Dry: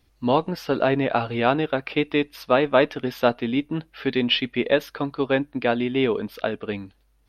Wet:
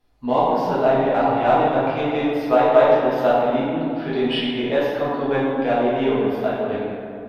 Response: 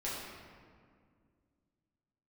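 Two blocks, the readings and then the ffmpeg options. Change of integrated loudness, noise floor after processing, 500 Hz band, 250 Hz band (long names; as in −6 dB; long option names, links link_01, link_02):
+3.5 dB, −33 dBFS, +5.0 dB, +2.0 dB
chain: -filter_complex "[0:a]equalizer=frequency=790:width_type=o:width=1.2:gain=10.5,asplit=2[link_01][link_02];[link_02]asoftclip=type=tanh:threshold=-18dB,volume=-8.5dB[link_03];[link_01][link_03]amix=inputs=2:normalize=0[link_04];[1:a]atrim=start_sample=2205,asetrate=33075,aresample=44100[link_05];[link_04][link_05]afir=irnorm=-1:irlink=0,volume=-9.5dB"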